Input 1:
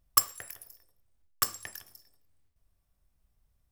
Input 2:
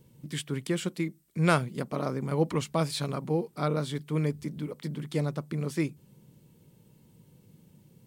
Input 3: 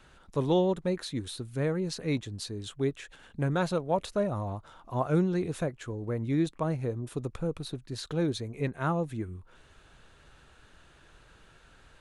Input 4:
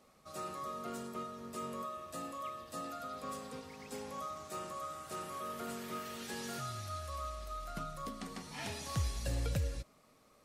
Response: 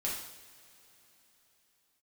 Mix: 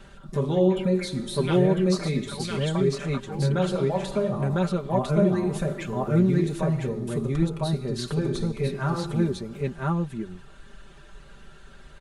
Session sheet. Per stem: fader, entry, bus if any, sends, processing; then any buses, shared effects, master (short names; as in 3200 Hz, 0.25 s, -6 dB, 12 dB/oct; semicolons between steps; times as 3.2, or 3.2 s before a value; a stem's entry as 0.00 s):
off
-5.5 dB, 0.00 s, bus A, no send, echo send -11 dB, envelope low-pass 550–3200 Hz up, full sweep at -24 dBFS
+2.0 dB, 0.00 s, bus A, send -11.5 dB, echo send -5 dB, low shelf 430 Hz +5.5 dB
-17.5 dB, 0.00 s, no bus, send -14 dB, no echo send, dry
bus A: 0.0 dB, reverb removal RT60 1.8 s; compressor, threshold -31 dBFS, peak gain reduction 15.5 dB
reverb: on, pre-delay 3 ms
echo: echo 1.003 s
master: comb 5.1 ms, depth 87%